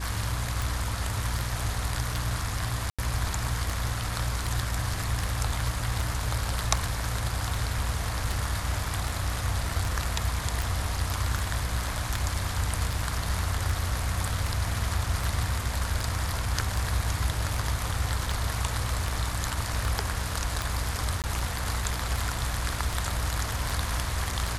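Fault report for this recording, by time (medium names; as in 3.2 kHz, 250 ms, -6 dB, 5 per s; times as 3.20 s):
hum 60 Hz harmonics 5 -33 dBFS
tick 78 rpm
2.90–2.99 s: dropout 86 ms
21.22–21.24 s: dropout 18 ms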